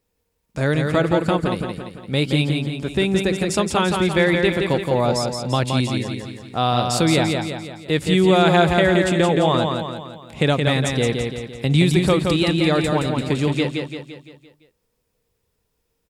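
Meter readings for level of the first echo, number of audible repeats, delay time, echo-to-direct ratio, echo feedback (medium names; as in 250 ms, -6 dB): -4.5 dB, 6, 171 ms, -3.0 dB, 50%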